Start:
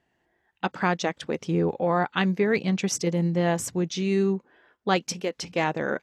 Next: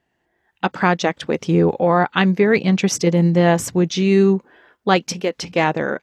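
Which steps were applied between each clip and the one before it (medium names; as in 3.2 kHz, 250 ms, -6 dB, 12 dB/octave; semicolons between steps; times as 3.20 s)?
dynamic bell 8.6 kHz, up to -5 dB, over -47 dBFS, Q 0.84; level rider gain up to 8.5 dB; trim +1 dB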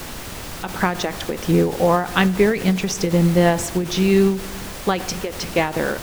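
added noise pink -32 dBFS; reverberation RT60 1.3 s, pre-delay 18 ms, DRR 16.5 dB; endings held to a fixed fall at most 110 dB/s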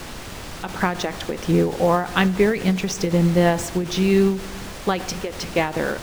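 median filter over 3 samples; trim -1.5 dB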